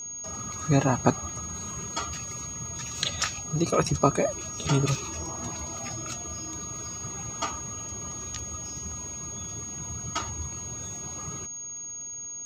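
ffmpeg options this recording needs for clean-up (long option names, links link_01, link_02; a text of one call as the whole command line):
ffmpeg -i in.wav -af "adeclick=threshold=4,bandreject=frequency=6600:width=30" out.wav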